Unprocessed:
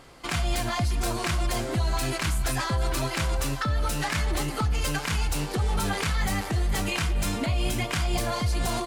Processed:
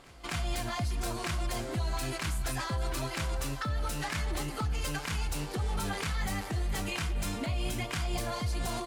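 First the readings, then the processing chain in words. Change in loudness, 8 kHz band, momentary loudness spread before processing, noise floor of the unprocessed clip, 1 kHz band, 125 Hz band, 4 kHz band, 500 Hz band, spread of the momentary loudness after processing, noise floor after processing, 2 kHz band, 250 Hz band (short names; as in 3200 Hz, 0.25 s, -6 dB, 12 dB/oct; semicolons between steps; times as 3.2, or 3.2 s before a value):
-6.5 dB, -6.5 dB, 1 LU, -34 dBFS, -6.5 dB, -6.5 dB, -6.5 dB, -6.5 dB, 1 LU, -40 dBFS, -6.5 dB, -6.5 dB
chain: pre-echo 0.251 s -22.5 dB; gain -6.5 dB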